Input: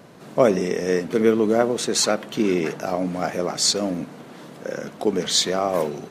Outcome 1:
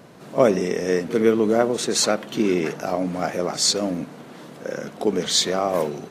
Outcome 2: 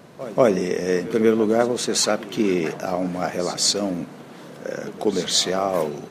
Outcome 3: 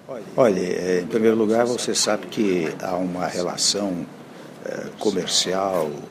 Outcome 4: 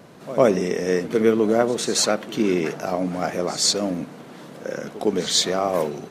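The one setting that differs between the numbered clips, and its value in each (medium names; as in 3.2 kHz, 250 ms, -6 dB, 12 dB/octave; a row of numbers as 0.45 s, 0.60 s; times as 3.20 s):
pre-echo, time: 47 ms, 188 ms, 293 ms, 106 ms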